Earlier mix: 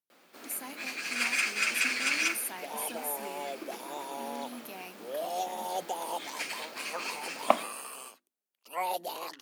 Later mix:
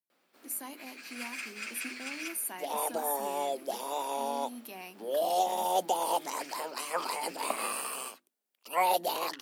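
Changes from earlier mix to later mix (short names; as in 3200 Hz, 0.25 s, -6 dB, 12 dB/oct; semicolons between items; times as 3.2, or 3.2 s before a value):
first sound -11.5 dB; second sound +6.0 dB; master: add notch 6500 Hz, Q 21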